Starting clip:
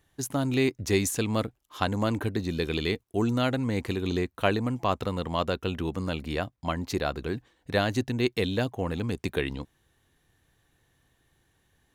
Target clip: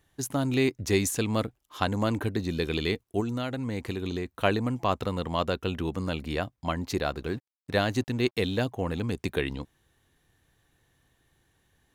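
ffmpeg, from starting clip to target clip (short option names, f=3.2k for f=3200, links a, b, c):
-filter_complex "[0:a]asettb=1/sr,asplit=3[a][b][c];[a]atrim=end=3.204[d];[b]atrim=start=3.2:end=4.26,asetpts=PTS-STARTPTS,afade=t=in:d=0.004:c=qsin,afade=t=out:st=1.056:d=0.004:c=qsin,acompressor=threshold=-28dB:ratio=6[e];[c]atrim=start=4.256[f];[d][e]acrossfade=d=0.004:c1=hsin:c2=qsin[g];[g][f]acrossfade=d=0.004:c1=qsin:c2=hsin,asettb=1/sr,asplit=3[h][i][j];[h]atrim=end=7.034[k];[i]atrim=start=7.03:end=8.6,asetpts=PTS-STARTPTS,afade=t=in:d=0.004:c=qsin,afade=t=out:st=1.566:d=0.004:c=qsin,aeval=exprs='sgn(val(0))*max(abs(val(0))-0.00224,0)':c=same[l];[j]atrim=start=8.596[m];[k][l]acrossfade=d=0.004:c1=hsin:c2=qsin[n];[n][m]acrossfade=d=0.004:c1=qsin:c2=hsin"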